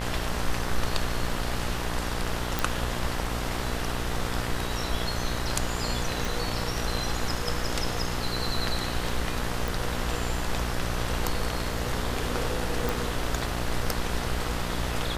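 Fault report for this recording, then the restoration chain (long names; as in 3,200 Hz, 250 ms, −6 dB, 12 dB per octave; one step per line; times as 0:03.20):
mains buzz 60 Hz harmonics 34 −33 dBFS
0:02.59: click
0:06.25: click
0:09.68: click
0:12.89: click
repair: click removal
hum removal 60 Hz, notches 34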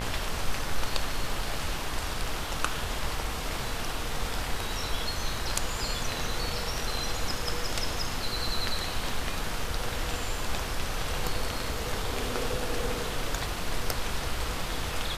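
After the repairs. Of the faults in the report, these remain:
none of them is left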